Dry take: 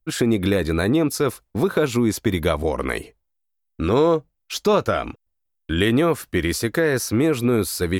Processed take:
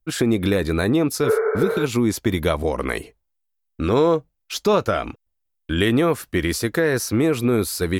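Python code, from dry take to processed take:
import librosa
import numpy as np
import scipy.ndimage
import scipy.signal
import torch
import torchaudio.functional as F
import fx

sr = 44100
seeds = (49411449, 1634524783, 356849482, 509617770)

y = fx.spec_repair(x, sr, seeds[0], start_s=1.27, length_s=0.55, low_hz=390.0, high_hz=2300.0, source='both')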